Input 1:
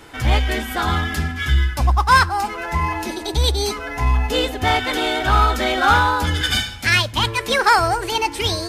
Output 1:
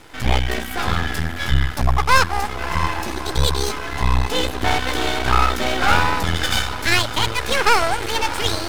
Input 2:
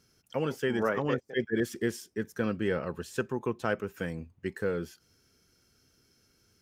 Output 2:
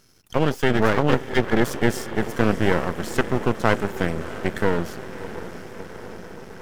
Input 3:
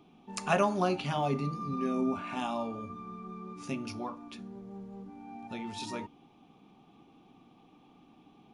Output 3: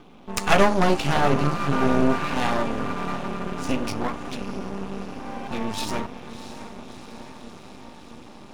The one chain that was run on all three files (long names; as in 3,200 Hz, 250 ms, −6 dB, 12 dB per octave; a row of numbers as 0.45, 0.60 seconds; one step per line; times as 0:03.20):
feedback delay with all-pass diffusion 657 ms, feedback 71%, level −12.5 dB
half-wave rectification
normalise the peak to −1.5 dBFS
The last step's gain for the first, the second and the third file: +2.5, +13.0, +14.5 decibels